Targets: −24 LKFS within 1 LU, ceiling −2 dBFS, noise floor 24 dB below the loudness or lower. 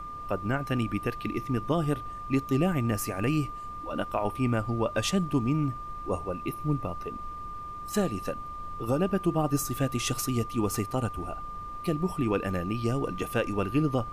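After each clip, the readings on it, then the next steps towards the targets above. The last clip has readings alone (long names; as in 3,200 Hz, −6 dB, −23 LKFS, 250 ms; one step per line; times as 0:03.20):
interfering tone 1,200 Hz; level of the tone −37 dBFS; background noise floor −39 dBFS; target noise floor −54 dBFS; integrated loudness −30.0 LKFS; sample peak −14.0 dBFS; target loudness −24.0 LKFS
→ notch filter 1,200 Hz, Q 30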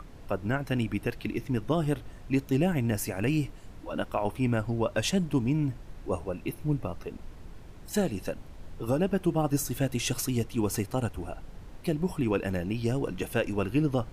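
interfering tone none found; background noise floor −47 dBFS; target noise floor −54 dBFS
→ noise reduction from a noise print 7 dB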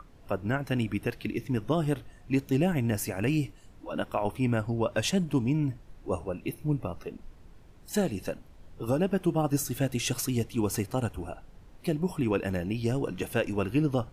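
background noise floor −53 dBFS; target noise floor −54 dBFS
→ noise reduction from a noise print 6 dB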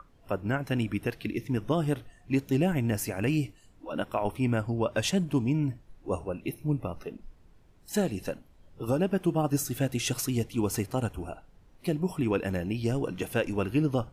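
background noise floor −58 dBFS; integrated loudness −30.0 LKFS; sample peak −15.0 dBFS; target loudness −24.0 LKFS
→ level +6 dB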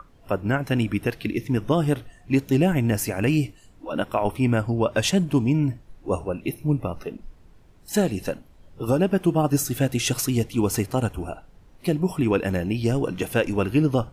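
integrated loudness −24.0 LKFS; sample peak −9.0 dBFS; background noise floor −52 dBFS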